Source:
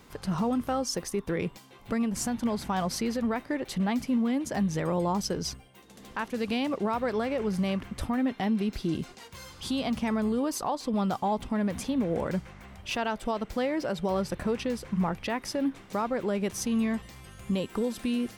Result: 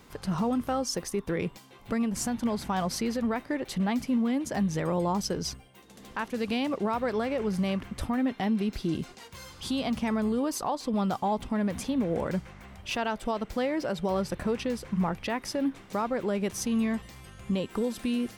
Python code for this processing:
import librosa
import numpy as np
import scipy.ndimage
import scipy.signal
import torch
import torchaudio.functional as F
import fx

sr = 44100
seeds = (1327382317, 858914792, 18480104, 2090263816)

y = fx.high_shelf(x, sr, hz=10000.0, db=-10.5, at=(17.3, 17.71))